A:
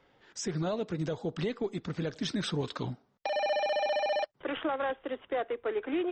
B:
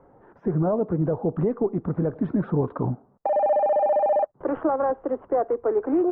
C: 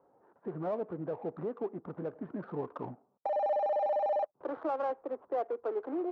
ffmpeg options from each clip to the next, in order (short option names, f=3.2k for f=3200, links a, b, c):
-filter_complex "[0:a]asplit=2[a][b];[b]alimiter=level_in=8.5dB:limit=-24dB:level=0:latency=1:release=89,volume=-8.5dB,volume=-1.5dB[c];[a][c]amix=inputs=2:normalize=0,lowpass=f=1.1k:w=0.5412,lowpass=f=1.1k:w=1.3066,volume=7dB"
-af "adynamicsmooth=sensitivity=6.5:basefreq=1.3k,bandpass=f=1.1k:t=q:w=0.51:csg=0,volume=-8dB"